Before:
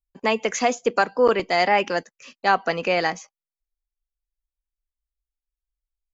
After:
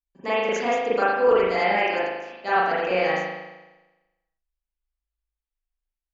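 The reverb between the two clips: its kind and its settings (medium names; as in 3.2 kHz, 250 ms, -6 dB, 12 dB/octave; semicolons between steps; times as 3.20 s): spring tank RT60 1.1 s, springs 38 ms, chirp 70 ms, DRR -10 dB; trim -11 dB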